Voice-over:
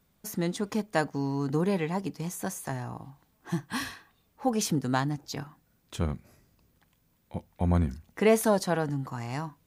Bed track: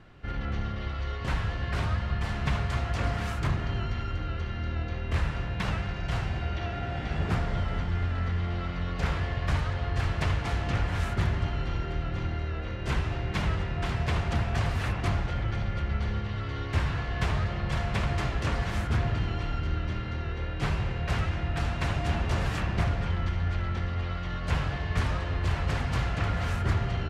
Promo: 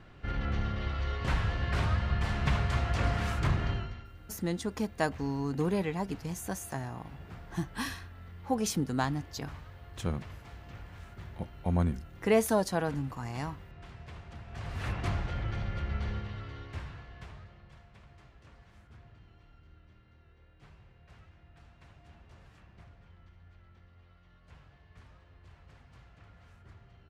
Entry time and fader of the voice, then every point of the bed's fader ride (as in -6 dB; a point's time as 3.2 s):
4.05 s, -3.0 dB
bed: 3.7 s -0.5 dB
4.11 s -19 dB
14.43 s -19 dB
14.88 s -4.5 dB
16.1 s -4.5 dB
17.9 s -28 dB